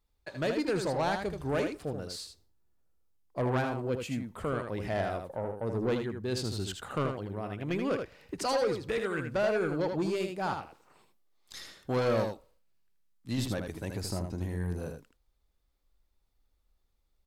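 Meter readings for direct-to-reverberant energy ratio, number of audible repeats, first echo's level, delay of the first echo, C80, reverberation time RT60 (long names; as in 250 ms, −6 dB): no reverb audible, 1, −6.0 dB, 79 ms, no reverb audible, no reverb audible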